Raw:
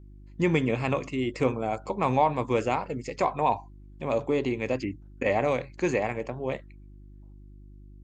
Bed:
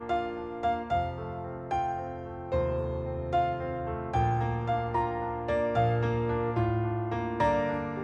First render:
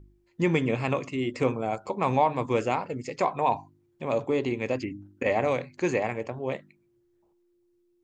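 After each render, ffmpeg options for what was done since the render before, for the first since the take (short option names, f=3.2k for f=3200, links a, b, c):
-af "bandreject=f=50:t=h:w=4,bandreject=f=100:t=h:w=4,bandreject=f=150:t=h:w=4,bandreject=f=200:t=h:w=4,bandreject=f=250:t=h:w=4,bandreject=f=300:t=h:w=4"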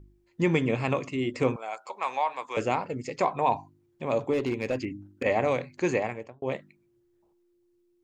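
-filter_complex "[0:a]asettb=1/sr,asplit=3[a][b][c];[a]atrim=end=1.564[d];[b]atrim=start=1.56:end=2.57,asetpts=PTS-STARTPTS,afade=t=in:d=0.004:c=qsin,afade=t=out:st=1.006:d=0.004:c=qsin,highpass=920[e];[c]atrim=start=2.566[f];[d][e]acrossfade=d=0.004:c1=hsin:c2=qsin[g];[g][f]acrossfade=d=0.004:c1=qsin:c2=hsin,asettb=1/sr,asplit=3[h][i][j];[h]atrim=end=4.334[k];[i]atrim=start=4.33:end=5.25,asetpts=PTS-STARTPTS,afade=t=in:d=0.004:c=qsin,afade=t=out:st=0.916:d=0.004:c=qsin,asoftclip=type=hard:threshold=-21.5dB[l];[j]atrim=start=5.246[m];[k][l]acrossfade=d=0.004:c1=hsin:c2=qsin[n];[n][m]acrossfade=d=0.004:c1=qsin:c2=hsin,asplit=2[o][p];[o]atrim=end=6.42,asetpts=PTS-STARTPTS,afade=t=out:st=5.97:d=0.45[q];[p]atrim=start=6.42,asetpts=PTS-STARTPTS,afade=t=in:d=0.004:c=hsin[r];[q][r]concat=n=2:v=0:a=1"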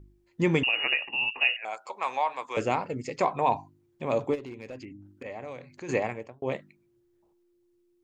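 -filter_complex "[0:a]asettb=1/sr,asplit=3[a][b][c];[a]atrim=end=0.634[d];[b]atrim=start=0.63:end=1.65,asetpts=PTS-STARTPTS,afade=t=in:d=0.004:c=qsin,afade=t=out:st=1.016:d=0.004:c=qsin,lowpass=f=2.6k:t=q:w=0.5098,lowpass=f=2.6k:t=q:w=0.6013,lowpass=f=2.6k:t=q:w=0.9,lowpass=f=2.6k:t=q:w=2.563,afreqshift=-3000[e];[c]atrim=start=1.646[f];[d][e]acrossfade=d=0.004:c1=hsin:c2=qsin[g];[g][f]acrossfade=d=0.004:c1=qsin:c2=hsin,asplit=3[h][i][j];[h]afade=t=out:st=4.34:d=0.02[k];[i]acompressor=threshold=-47dB:ratio=2:attack=3.2:release=140:knee=1:detection=peak,afade=t=in:st=4.34:d=0.02,afade=t=out:st=5.88:d=0.02[l];[j]afade=t=in:st=5.88:d=0.02[m];[k][l][m]amix=inputs=3:normalize=0"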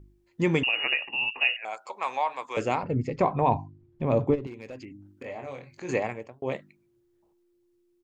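-filter_complex "[0:a]asettb=1/sr,asplit=3[a][b][c];[a]atrim=end=2.834[d];[b]atrim=start=2.83:end=4.47,asetpts=PTS-STARTPTS,afade=t=in:d=0.004:c=qsin,afade=t=out:st=1.636:d=0.004:c=qsin,aemphasis=mode=reproduction:type=riaa[e];[c]atrim=start=4.466[f];[d][e]acrossfade=d=0.004:c1=hsin:c2=qsin[g];[g][f]acrossfade=d=0.004:c1=qsin:c2=hsin,asplit=3[h][i][j];[h]afade=t=out:st=5.23:d=0.02[k];[i]asplit=2[l][m];[m]adelay=22,volume=-5dB[n];[l][n]amix=inputs=2:normalize=0,afade=t=in:st=5.23:d=0.02,afade=t=out:st=5.89:d=0.02[o];[j]afade=t=in:st=5.89:d=0.02[p];[k][o][p]amix=inputs=3:normalize=0"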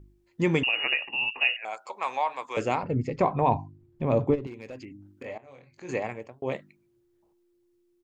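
-filter_complex "[0:a]asplit=2[a][b];[a]atrim=end=5.38,asetpts=PTS-STARTPTS,afade=t=out:st=5.376:d=0.004:c=hsin:silence=0.141254[c];[b]atrim=start=5.38,asetpts=PTS-STARTPTS,afade=t=in:d=0.89:silence=0.141254[d];[c][d]concat=n=2:v=0:a=1"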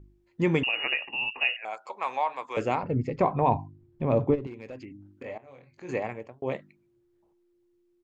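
-af "highshelf=f=4.9k:g=-9.5"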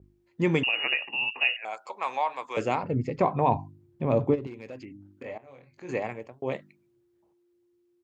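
-af "highpass=74,adynamicequalizer=threshold=0.00794:dfrequency=3000:dqfactor=0.7:tfrequency=3000:tqfactor=0.7:attack=5:release=100:ratio=0.375:range=2:mode=boostabove:tftype=highshelf"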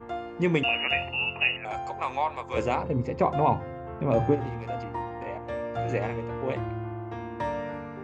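-filter_complex "[1:a]volume=-5dB[a];[0:a][a]amix=inputs=2:normalize=0"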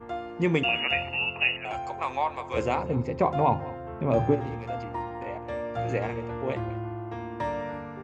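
-af "aecho=1:1:203:0.119"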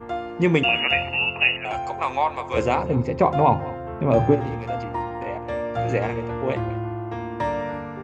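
-af "volume=5.5dB"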